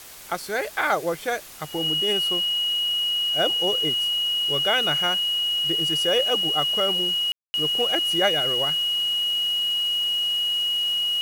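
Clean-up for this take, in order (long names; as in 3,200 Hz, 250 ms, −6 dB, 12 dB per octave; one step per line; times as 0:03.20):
notch filter 2,900 Hz, Q 30
ambience match 0:07.32–0:07.54
broadband denoise 30 dB, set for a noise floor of −35 dBFS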